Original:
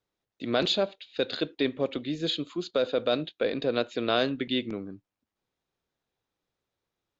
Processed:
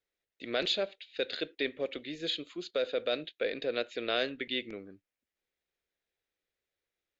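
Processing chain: graphic EQ 125/250/500/1000/2000 Hz -10/-5/+3/-9/+8 dB; gain -5 dB

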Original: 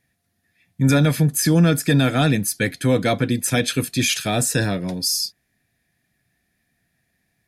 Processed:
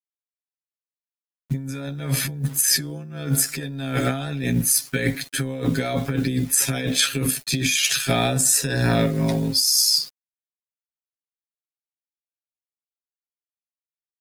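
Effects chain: bit-crush 8-bit; negative-ratio compressor -22 dBFS, ratio -0.5; granular stretch 1.9×, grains 31 ms; gain +2 dB

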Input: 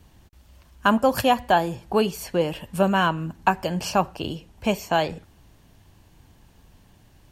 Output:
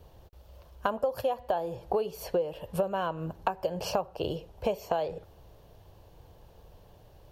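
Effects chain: graphic EQ 250/500/2000/8000 Hz -11/+12/-8/-10 dB; compressor 16:1, threshold -25 dBFS, peak gain reduction 18.5 dB

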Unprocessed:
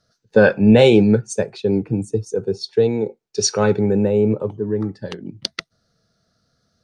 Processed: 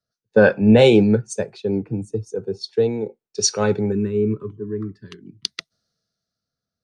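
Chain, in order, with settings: spectral gain 3.92–5.51, 450–990 Hz -22 dB; three-band expander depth 40%; gain -3 dB

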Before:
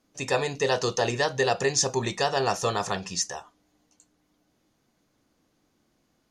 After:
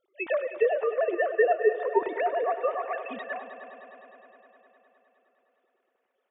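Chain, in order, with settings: sine-wave speech; treble ducked by the level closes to 1300 Hz, closed at -24 dBFS; multi-head echo 0.103 s, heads all three, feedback 69%, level -17 dB

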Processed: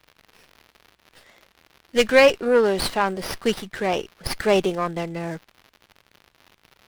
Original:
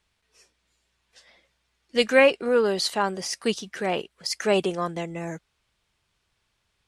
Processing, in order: crackle 240/s -44 dBFS; running maximum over 5 samples; gain +3.5 dB

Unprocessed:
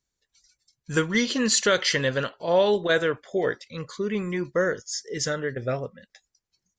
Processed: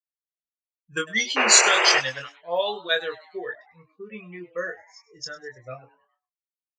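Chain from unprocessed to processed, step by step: per-bin expansion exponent 2; low-pass opened by the level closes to 460 Hz, open at -24 dBFS; tilt +4 dB/oct; painted sound noise, 1.36–1.99, 340–2900 Hz -21 dBFS; doubler 23 ms -4.5 dB; on a send: frequency-shifting echo 0.101 s, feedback 46%, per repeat +150 Hz, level -19 dB; on the sum: gain -1 dB

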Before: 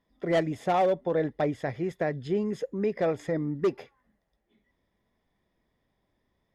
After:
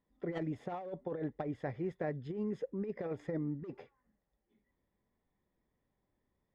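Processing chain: LPF 1500 Hz 6 dB/oct; notch 660 Hz, Q 12; negative-ratio compressor -28 dBFS, ratio -0.5; gain -8 dB

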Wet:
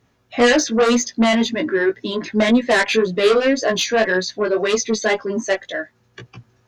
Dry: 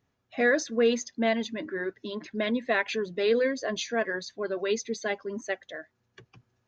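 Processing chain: added harmonics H 5 -8 dB, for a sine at -13 dBFS; chorus 1.9 Hz, delay 16 ms, depth 2.9 ms; gain +7.5 dB

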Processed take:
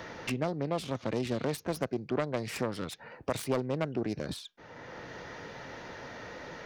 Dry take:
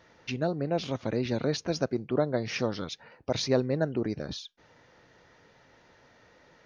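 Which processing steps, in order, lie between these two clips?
self-modulated delay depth 0.36 ms; three-band squash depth 70%; gain -3 dB

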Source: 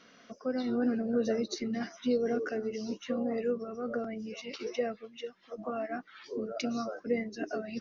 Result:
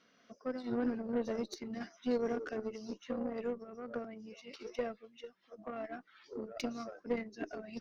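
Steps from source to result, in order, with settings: added harmonics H 2 -14 dB, 7 -25 dB, 8 -43 dB, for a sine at -18.5 dBFS; noise-modulated level, depth 60%; gain -2.5 dB

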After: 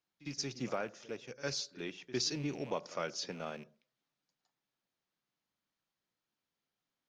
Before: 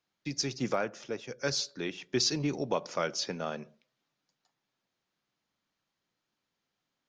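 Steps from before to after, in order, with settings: rattling part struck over -45 dBFS, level -37 dBFS; pre-echo 56 ms -17 dB; gain -6.5 dB

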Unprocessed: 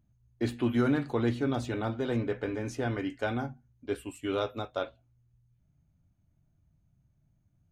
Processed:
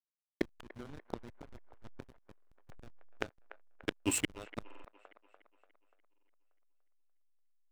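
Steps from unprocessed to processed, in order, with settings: tilt shelf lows -6.5 dB, about 1200 Hz; flipped gate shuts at -30 dBFS, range -25 dB; backlash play -45 dBFS; band-limited delay 0.292 s, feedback 52%, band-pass 1100 Hz, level -12.5 dB; stuck buffer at 2.33/4.66/6.09, samples 2048, times 3; gain +14 dB

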